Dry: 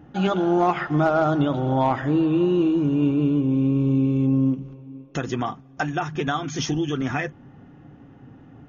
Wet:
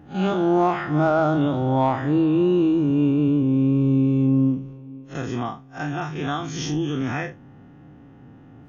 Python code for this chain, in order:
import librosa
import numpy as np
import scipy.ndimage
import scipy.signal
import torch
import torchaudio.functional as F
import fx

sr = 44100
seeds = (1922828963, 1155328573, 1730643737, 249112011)

y = fx.spec_blur(x, sr, span_ms=89.0)
y = y * librosa.db_to_amplitude(1.5)